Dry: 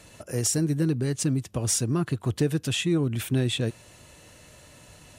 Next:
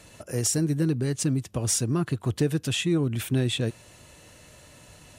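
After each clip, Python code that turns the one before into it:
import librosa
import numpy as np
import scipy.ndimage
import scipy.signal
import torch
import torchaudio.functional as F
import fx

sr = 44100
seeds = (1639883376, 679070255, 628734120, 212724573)

y = x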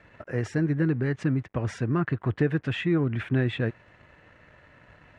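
y = np.sign(x) * np.maximum(np.abs(x) - 10.0 ** (-56.5 / 20.0), 0.0)
y = fx.lowpass_res(y, sr, hz=1800.0, q=2.4)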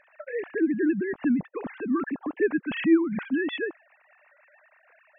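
y = fx.sine_speech(x, sr)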